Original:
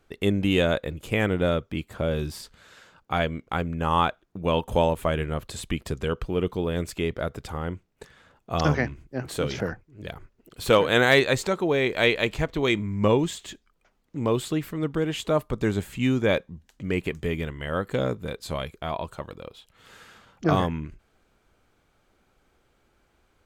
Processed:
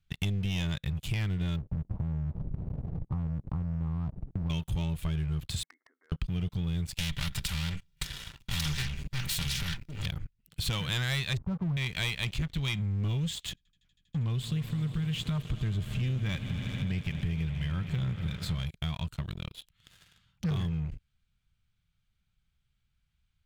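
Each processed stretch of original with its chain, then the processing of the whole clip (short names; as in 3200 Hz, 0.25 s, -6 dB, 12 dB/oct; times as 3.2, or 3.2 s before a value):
1.56–4.5 Gaussian blur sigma 18 samples + spectral compressor 4:1
5.63–6.12 compressor 16:1, threshold -31 dBFS + brick-wall FIR band-pass 260–2200 Hz
6.98–10.06 minimum comb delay 2.1 ms + comb 5.1 ms, depth 48% + spectral compressor 2:1
11.37–11.77 steep low-pass 1100 Hz + bell 84 Hz +8 dB 1.5 oct
13.49–18.66 high shelf 3600 Hz -7 dB + swelling echo 80 ms, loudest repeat 5, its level -18 dB
whole clip: EQ curve 160 Hz 0 dB, 330 Hz -28 dB, 520 Hz -28 dB, 3400 Hz -3 dB, 6300 Hz -9 dB; sample leveller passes 3; compressor 6:1, threshold -29 dBFS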